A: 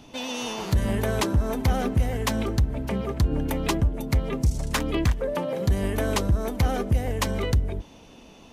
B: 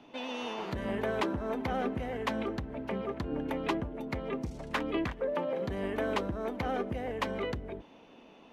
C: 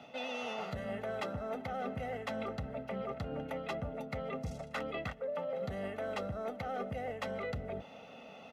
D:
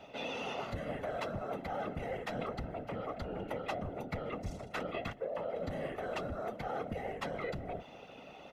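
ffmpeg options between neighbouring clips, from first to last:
-filter_complex "[0:a]acrossover=split=200 3400:gain=0.158 1 0.112[a][b][c];[a][b][c]amix=inputs=3:normalize=0,volume=-4dB"
-af "highpass=98,aecho=1:1:1.5:0.82,areverse,acompressor=threshold=-39dB:ratio=6,areverse,volume=3dB"
-af "afftfilt=real='hypot(re,im)*cos(2*PI*random(0))':imag='hypot(re,im)*sin(2*PI*random(1))':win_size=512:overlap=0.75,volume=6dB"

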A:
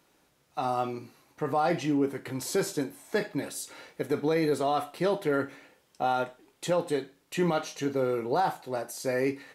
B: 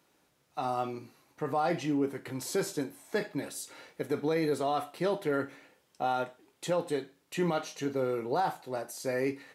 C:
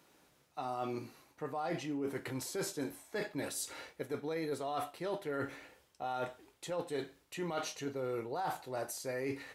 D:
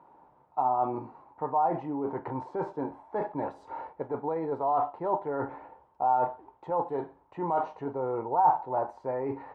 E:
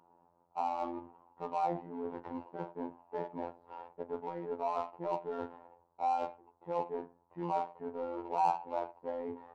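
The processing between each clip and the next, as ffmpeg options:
-af "highpass=57,volume=-3dB"
-af "asubboost=boost=7:cutoff=65,areverse,acompressor=threshold=-38dB:ratio=6,areverse,volume=3dB"
-af "lowpass=f=910:t=q:w=6.9,volume=3.5dB"
-af "adynamicsmooth=sensitivity=5:basefreq=1.3k,afftfilt=real='hypot(re,im)*cos(PI*b)':imag='0':win_size=2048:overlap=0.75,volume=-3.5dB"

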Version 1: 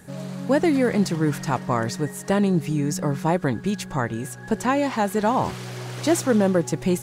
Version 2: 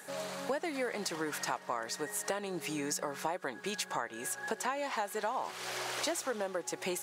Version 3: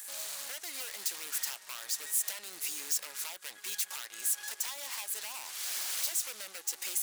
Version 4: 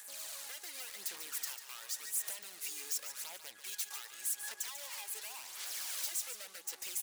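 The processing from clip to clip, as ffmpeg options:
-af "highpass=580,acompressor=threshold=-35dB:ratio=6,volume=2.5dB"
-af "aeval=exprs='0.0251*(abs(mod(val(0)/0.0251+3,4)-2)-1)':c=same,aeval=exprs='0.0251*(cos(1*acos(clip(val(0)/0.0251,-1,1)))-cos(1*PI/2))+0.00501*(cos(6*acos(clip(val(0)/0.0251,-1,1)))-cos(6*PI/2))':c=same,aderivative,volume=7.5dB"
-filter_complex "[0:a]aphaser=in_gain=1:out_gain=1:delay=2.5:decay=0.45:speed=0.89:type=sinusoidal,asplit=2[a][b];[b]aecho=0:1:144:0.316[c];[a][c]amix=inputs=2:normalize=0,volume=-6.5dB"

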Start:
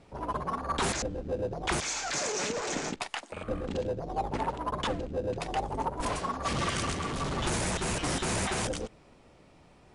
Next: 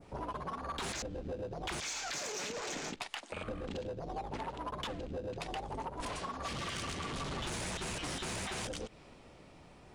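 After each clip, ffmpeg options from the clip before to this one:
-af "adynamicequalizer=threshold=0.00316:dfrequency=3400:dqfactor=0.76:tfrequency=3400:tqfactor=0.76:attack=5:release=100:ratio=0.375:range=2.5:mode=boostabove:tftype=bell,asoftclip=type=tanh:threshold=-23dB,acompressor=threshold=-38dB:ratio=10,volume=1dB"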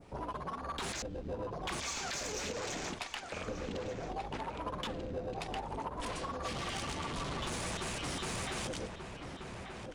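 -filter_complex "[0:a]asplit=2[a][b];[b]adelay=1185,lowpass=f=1.9k:p=1,volume=-5dB,asplit=2[c][d];[d]adelay=1185,lowpass=f=1.9k:p=1,volume=0.32,asplit=2[e][f];[f]adelay=1185,lowpass=f=1.9k:p=1,volume=0.32,asplit=2[g][h];[h]adelay=1185,lowpass=f=1.9k:p=1,volume=0.32[i];[a][c][e][g][i]amix=inputs=5:normalize=0"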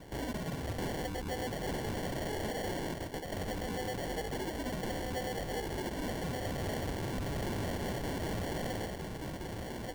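-af "acrusher=samples=35:mix=1:aa=0.000001,asoftclip=type=tanh:threshold=-38dB,volume=6dB"

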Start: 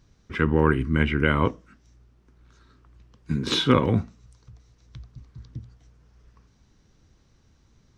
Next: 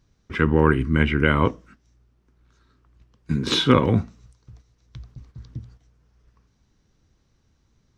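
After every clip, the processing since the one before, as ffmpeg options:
-af "agate=range=-7dB:threshold=-50dB:ratio=16:detection=peak,volume=2.5dB"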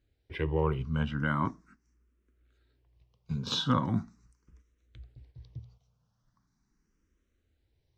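-filter_complex "[0:a]asplit=2[a][b];[b]afreqshift=0.4[c];[a][c]amix=inputs=2:normalize=1,volume=-7.5dB"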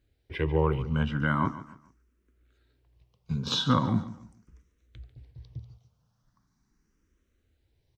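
-af "aecho=1:1:144|288|432:0.178|0.0569|0.0182,volume=3dB"

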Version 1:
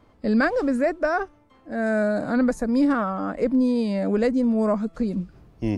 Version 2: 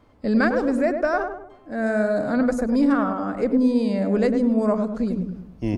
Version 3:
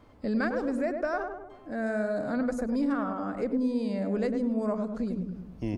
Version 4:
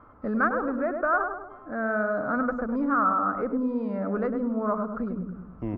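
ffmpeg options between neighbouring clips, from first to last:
-filter_complex "[0:a]asplit=2[a][b];[b]adelay=102,lowpass=f=1.1k:p=1,volume=-5dB,asplit=2[c][d];[d]adelay=102,lowpass=f=1.1k:p=1,volume=0.46,asplit=2[e][f];[f]adelay=102,lowpass=f=1.1k:p=1,volume=0.46,asplit=2[g][h];[h]adelay=102,lowpass=f=1.1k:p=1,volume=0.46,asplit=2[i][j];[j]adelay=102,lowpass=f=1.1k:p=1,volume=0.46,asplit=2[k][l];[l]adelay=102,lowpass=f=1.1k:p=1,volume=0.46[m];[a][c][e][g][i][k][m]amix=inputs=7:normalize=0"
-af "acompressor=threshold=-41dB:ratio=1.5"
-af "lowpass=f=1.3k:t=q:w=6.7"

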